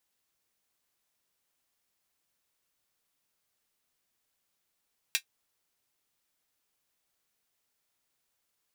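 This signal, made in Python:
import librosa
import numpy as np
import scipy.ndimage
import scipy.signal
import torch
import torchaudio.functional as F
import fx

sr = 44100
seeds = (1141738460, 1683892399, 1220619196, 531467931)

y = fx.drum_hat(sr, length_s=0.24, from_hz=2300.0, decay_s=0.09)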